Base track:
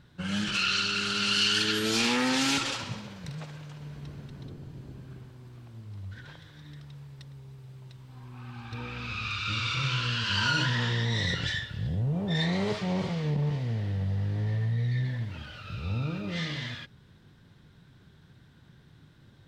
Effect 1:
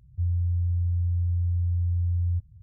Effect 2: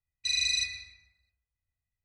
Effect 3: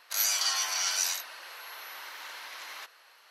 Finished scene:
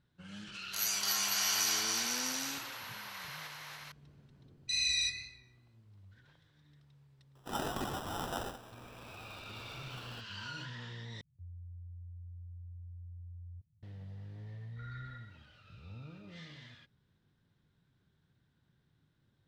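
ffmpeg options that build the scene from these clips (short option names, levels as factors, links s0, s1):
-filter_complex "[3:a]asplit=2[s0][s1];[2:a]asplit=2[s2][s3];[0:a]volume=0.133[s4];[s0]aecho=1:1:290|493|635.1|734.6|804.2|852.9:0.794|0.631|0.501|0.398|0.316|0.251[s5];[s2]flanger=delay=17.5:depth=4.9:speed=2.2[s6];[s1]acrusher=samples=20:mix=1:aa=0.000001[s7];[1:a]highpass=160[s8];[s3]lowpass=f=3300:t=q:w=0.5098,lowpass=f=3300:t=q:w=0.6013,lowpass=f=3300:t=q:w=0.9,lowpass=f=3300:t=q:w=2.563,afreqshift=-3900[s9];[s4]asplit=2[s10][s11];[s10]atrim=end=11.214[s12];[s8]atrim=end=2.62,asetpts=PTS-STARTPTS,volume=0.251[s13];[s11]atrim=start=13.826[s14];[s5]atrim=end=3.3,asetpts=PTS-STARTPTS,volume=0.473,afade=t=in:d=0.004:c=hsin,afade=t=out:st=3.296:d=0.004:c=hsin,adelay=620[s15];[s6]atrim=end=2.04,asetpts=PTS-STARTPTS,volume=0.944,afade=t=in:d=0.004:c=hsin,afade=t=out:st=2.036:d=0.004:c=hsin,adelay=4440[s16];[s7]atrim=end=3.3,asetpts=PTS-STARTPTS,volume=0.355,afade=t=in:d=0.004:c=hsin,afade=t=out:st=3.296:d=0.004:c=hsin,adelay=7350[s17];[s9]atrim=end=2.04,asetpts=PTS-STARTPTS,volume=0.15,afade=t=in:d=0.004:c=hsin,afade=t=out:st=2.036:d=0.004:c=hsin,adelay=14520[s18];[s12][s13]acrossfade=d=0.004:c1=hsin:c2=hsin[s19];[s19][s14]acrossfade=d=0.004:c1=hsin:c2=hsin[s20];[s20][s15][s16][s17][s18]amix=inputs=5:normalize=0"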